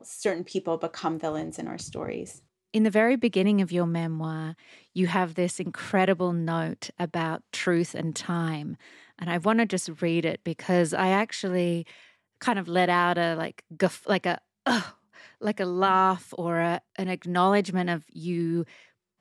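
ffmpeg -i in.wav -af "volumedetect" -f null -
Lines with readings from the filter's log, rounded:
mean_volume: -27.0 dB
max_volume: -9.0 dB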